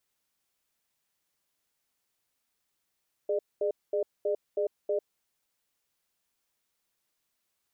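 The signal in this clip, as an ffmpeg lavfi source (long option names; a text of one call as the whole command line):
ffmpeg -f lavfi -i "aevalsrc='0.0398*(sin(2*PI*415*t)+sin(2*PI*600*t))*clip(min(mod(t,0.32),0.1-mod(t,0.32))/0.005,0,1)':duration=1.81:sample_rate=44100" out.wav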